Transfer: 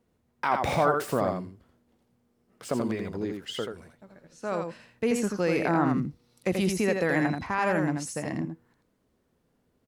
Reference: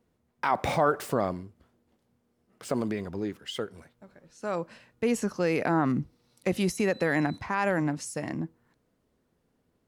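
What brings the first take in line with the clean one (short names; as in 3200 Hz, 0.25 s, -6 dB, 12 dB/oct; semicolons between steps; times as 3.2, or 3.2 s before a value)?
inverse comb 83 ms -5 dB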